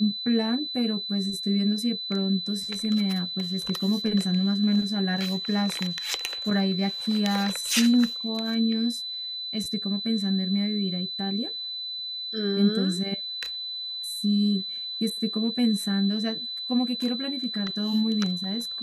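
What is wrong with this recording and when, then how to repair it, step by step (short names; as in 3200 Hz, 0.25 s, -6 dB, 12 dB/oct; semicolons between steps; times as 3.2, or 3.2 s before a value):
tone 4000 Hz -31 dBFS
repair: notch 4000 Hz, Q 30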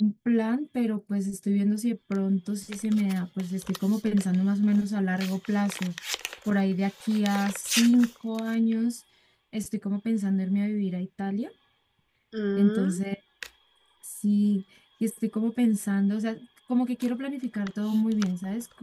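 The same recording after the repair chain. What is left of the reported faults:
none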